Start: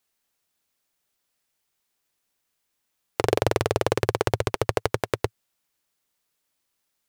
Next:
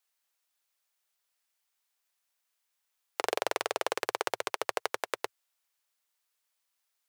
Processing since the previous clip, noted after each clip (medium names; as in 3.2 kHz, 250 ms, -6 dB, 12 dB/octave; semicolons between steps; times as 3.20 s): high-pass 680 Hz 12 dB/octave; trim -3.5 dB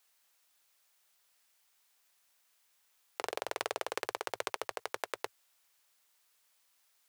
compressor with a negative ratio -38 dBFS, ratio -1; trim +1.5 dB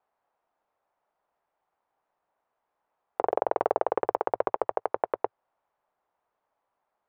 waveshaping leveller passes 1; resonant low-pass 820 Hz, resonance Q 1.6; trim +6.5 dB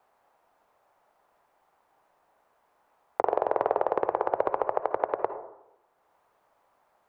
reverberation RT60 0.70 s, pre-delay 48 ms, DRR 10 dB; three bands compressed up and down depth 40%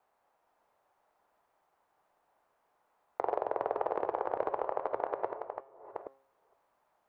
chunks repeated in reverse 467 ms, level -6 dB; de-hum 134.9 Hz, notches 38; trim -7 dB